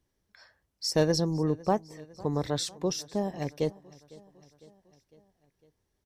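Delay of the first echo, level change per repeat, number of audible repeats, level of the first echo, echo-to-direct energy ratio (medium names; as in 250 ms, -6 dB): 504 ms, -4.5 dB, 3, -22.0 dB, -20.0 dB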